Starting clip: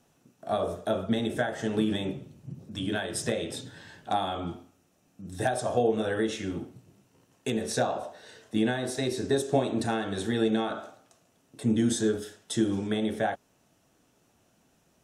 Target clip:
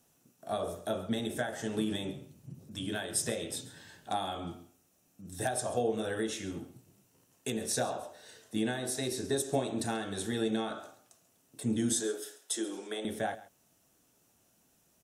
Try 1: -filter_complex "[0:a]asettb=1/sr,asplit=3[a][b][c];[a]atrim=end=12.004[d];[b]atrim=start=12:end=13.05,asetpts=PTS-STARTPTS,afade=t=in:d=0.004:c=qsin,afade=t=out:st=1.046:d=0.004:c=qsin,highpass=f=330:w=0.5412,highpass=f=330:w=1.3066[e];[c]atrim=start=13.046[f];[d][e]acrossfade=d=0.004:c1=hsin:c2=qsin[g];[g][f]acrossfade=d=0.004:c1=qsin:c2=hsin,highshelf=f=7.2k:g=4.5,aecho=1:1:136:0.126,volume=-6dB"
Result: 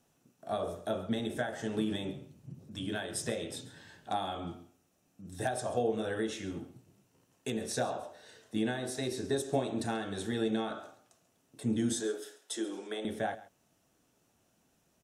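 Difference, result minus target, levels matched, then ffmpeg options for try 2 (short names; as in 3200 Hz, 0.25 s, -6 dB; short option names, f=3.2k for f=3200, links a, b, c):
8000 Hz band -5.0 dB
-filter_complex "[0:a]asettb=1/sr,asplit=3[a][b][c];[a]atrim=end=12.004[d];[b]atrim=start=12:end=13.05,asetpts=PTS-STARTPTS,afade=t=in:d=0.004:c=qsin,afade=t=out:st=1.046:d=0.004:c=qsin,highpass=f=330:w=0.5412,highpass=f=330:w=1.3066[e];[c]atrim=start=13.046[f];[d][e]acrossfade=d=0.004:c1=hsin:c2=qsin[g];[g][f]acrossfade=d=0.004:c1=qsin:c2=hsin,highshelf=f=7.2k:g=15.5,aecho=1:1:136:0.126,volume=-6dB"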